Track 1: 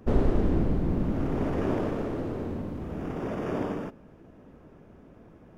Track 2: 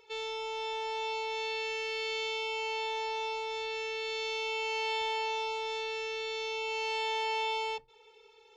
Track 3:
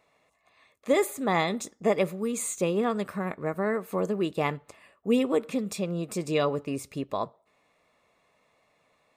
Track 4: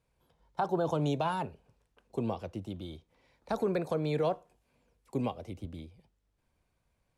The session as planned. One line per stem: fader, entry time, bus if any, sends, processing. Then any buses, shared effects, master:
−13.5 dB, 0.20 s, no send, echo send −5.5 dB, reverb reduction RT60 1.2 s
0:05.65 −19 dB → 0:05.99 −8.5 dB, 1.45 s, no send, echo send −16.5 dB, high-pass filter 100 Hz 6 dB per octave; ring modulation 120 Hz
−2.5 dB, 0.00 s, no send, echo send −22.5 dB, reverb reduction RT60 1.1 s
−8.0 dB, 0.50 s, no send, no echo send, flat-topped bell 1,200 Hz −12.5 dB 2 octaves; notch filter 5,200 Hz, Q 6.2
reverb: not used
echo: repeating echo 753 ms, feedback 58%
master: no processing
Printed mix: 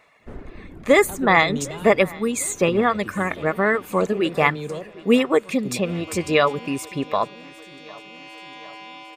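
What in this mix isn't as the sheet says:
stem 3 −2.5 dB → +7.0 dB
stem 4 −8.0 dB → 0.0 dB
master: extra parametric band 1,800 Hz +8 dB 1.4 octaves

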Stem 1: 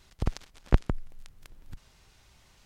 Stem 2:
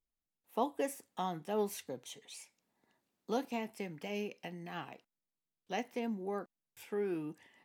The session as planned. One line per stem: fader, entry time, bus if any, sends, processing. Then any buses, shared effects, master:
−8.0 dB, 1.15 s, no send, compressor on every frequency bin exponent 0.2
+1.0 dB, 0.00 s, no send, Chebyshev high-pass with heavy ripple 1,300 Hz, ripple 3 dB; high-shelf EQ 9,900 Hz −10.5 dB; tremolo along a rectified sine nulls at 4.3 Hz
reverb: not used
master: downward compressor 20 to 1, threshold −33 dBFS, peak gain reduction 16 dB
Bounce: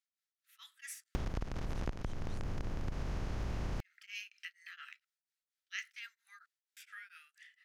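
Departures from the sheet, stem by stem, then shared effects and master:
stem 1 −8.0 dB → +2.0 dB
stem 2 +1.0 dB → +7.5 dB

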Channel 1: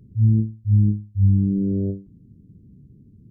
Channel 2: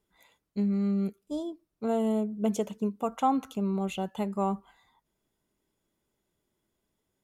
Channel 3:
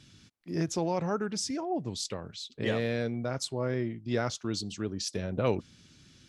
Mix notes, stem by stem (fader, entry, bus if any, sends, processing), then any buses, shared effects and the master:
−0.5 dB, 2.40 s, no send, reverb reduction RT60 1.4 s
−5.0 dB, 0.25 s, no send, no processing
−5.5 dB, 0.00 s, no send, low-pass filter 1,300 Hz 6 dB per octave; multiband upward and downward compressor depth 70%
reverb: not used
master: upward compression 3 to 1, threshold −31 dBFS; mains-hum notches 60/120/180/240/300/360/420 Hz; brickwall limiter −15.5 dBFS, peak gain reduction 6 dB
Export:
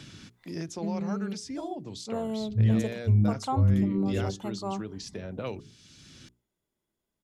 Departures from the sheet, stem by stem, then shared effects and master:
stem 3: missing low-pass filter 1,300 Hz 6 dB per octave
master: missing upward compression 3 to 1, threshold −31 dBFS

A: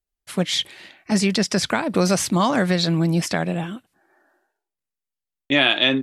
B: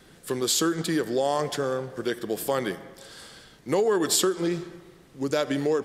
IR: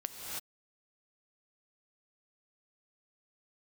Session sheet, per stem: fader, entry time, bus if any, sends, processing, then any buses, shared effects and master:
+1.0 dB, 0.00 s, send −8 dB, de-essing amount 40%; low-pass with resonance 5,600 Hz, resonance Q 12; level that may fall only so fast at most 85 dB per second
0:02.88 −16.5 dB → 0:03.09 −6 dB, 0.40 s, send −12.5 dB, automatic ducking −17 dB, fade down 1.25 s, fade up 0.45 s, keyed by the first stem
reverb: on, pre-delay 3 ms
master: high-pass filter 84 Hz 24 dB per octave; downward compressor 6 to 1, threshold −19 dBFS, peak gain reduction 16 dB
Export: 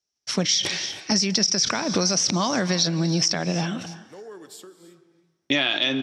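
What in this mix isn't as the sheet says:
stem B −16.5 dB → −24.0 dB
reverb return −7.5 dB

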